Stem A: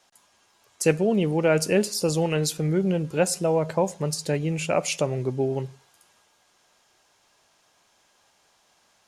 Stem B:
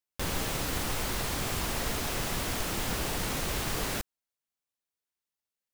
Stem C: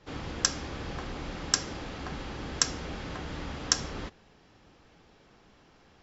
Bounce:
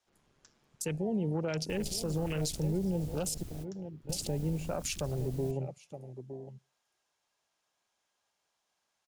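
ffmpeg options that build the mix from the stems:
ffmpeg -i stem1.wav -i stem2.wav -i stem3.wav -filter_complex "[0:a]lowshelf=frequency=400:gain=-3.5,volume=-1dB,asplit=3[link_01][link_02][link_03];[link_01]atrim=end=3.43,asetpts=PTS-STARTPTS,afade=type=out:start_time=3.426:duration=0.004:curve=hsin[link_04];[link_02]atrim=start=3.43:end=4.09,asetpts=PTS-STARTPTS,volume=0[link_05];[link_03]atrim=start=4.09,asetpts=PTS-STARTPTS,afade=type=in:duration=0.004:curve=hsin[link_06];[link_04][link_05][link_06]concat=n=3:v=0:a=1,asplit=3[link_07][link_08][link_09];[link_08]volume=-13dB[link_10];[1:a]highshelf=frequency=6300:gain=6.5,adelay=1500,volume=-7.5dB[link_11];[2:a]aeval=exprs='val(0)*sin(2*PI*70*n/s)':channel_layout=same,volume=-14dB[link_12];[link_09]apad=whole_len=318904[link_13];[link_11][link_13]sidechaingate=range=-33dB:threshold=-59dB:ratio=16:detection=peak[link_14];[link_10]aecho=0:1:913:1[link_15];[link_07][link_14][link_12][link_15]amix=inputs=4:normalize=0,acrossover=split=200|3000[link_16][link_17][link_18];[link_17]acompressor=threshold=-46dB:ratio=1.5[link_19];[link_16][link_19][link_18]amix=inputs=3:normalize=0,afwtdn=0.0158,alimiter=limit=-24dB:level=0:latency=1:release=52" out.wav

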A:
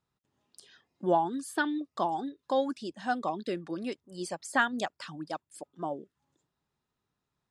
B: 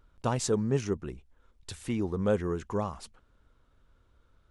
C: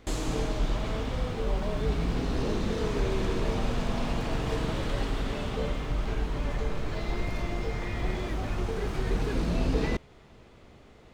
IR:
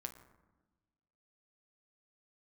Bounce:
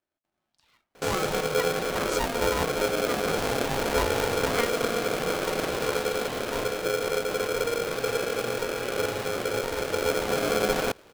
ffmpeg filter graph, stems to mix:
-filter_complex "[0:a]lowpass=3500,acontrast=46,volume=-13.5dB,asplit=2[link_01][link_02];[link_02]volume=-6dB[link_03];[1:a]adelay=1700,volume=-3.5dB[link_04];[2:a]equalizer=frequency=430:width=5.3:gain=-7,adelay=950,volume=1dB[link_05];[3:a]atrim=start_sample=2205[link_06];[link_03][link_06]afir=irnorm=-1:irlink=0[link_07];[link_01][link_04][link_05][link_07]amix=inputs=4:normalize=0,aeval=exprs='val(0)*sgn(sin(2*PI*470*n/s))':channel_layout=same"

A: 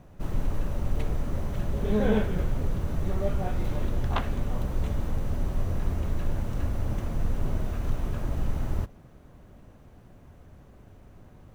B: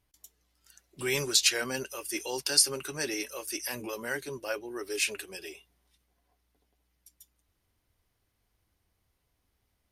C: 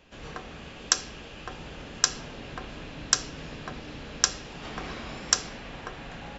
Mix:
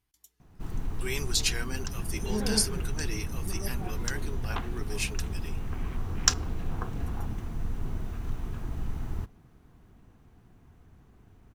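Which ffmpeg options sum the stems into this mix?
ffmpeg -i stem1.wav -i stem2.wav -i stem3.wav -filter_complex "[0:a]adelay=400,volume=-5dB[link_01];[1:a]volume=-4dB,asplit=2[link_02][link_03];[2:a]afwtdn=0.0126,adelay=950,volume=2.5dB[link_04];[link_03]apad=whole_len=323623[link_05];[link_04][link_05]sidechaincompress=threshold=-53dB:ratio=8:attack=35:release=869[link_06];[link_01][link_02][link_06]amix=inputs=3:normalize=0,equalizer=frequency=570:width_type=o:width=0.25:gain=-14.5" out.wav

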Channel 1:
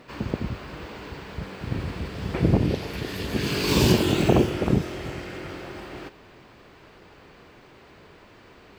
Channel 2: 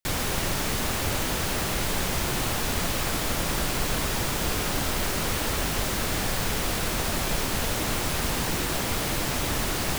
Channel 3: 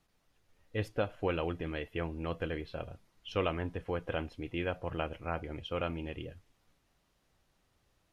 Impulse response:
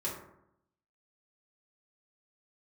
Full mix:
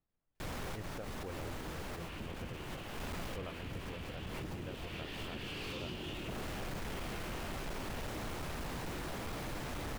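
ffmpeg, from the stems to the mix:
-filter_complex "[0:a]acompressor=threshold=-27dB:ratio=6,equalizer=frequency=3000:width=1.3:gain=15,adelay=2000,volume=-3.5dB[link_01];[1:a]asoftclip=type=tanh:threshold=-25.5dB,adelay=350,volume=2.5dB[link_02];[2:a]lowshelf=frequency=370:gain=4.5,volume=-15.5dB,asplit=2[link_03][link_04];[link_04]apad=whole_len=455986[link_05];[link_02][link_05]sidechaincompress=threshold=-58dB:ratio=6:attack=24:release=169[link_06];[link_01][link_06]amix=inputs=2:normalize=0,volume=26dB,asoftclip=hard,volume=-26dB,alimiter=level_in=12dB:limit=-24dB:level=0:latency=1:release=99,volume=-12dB,volume=0dB[link_07];[link_03][link_07]amix=inputs=2:normalize=0,highshelf=frequency=3400:gain=-11.5"

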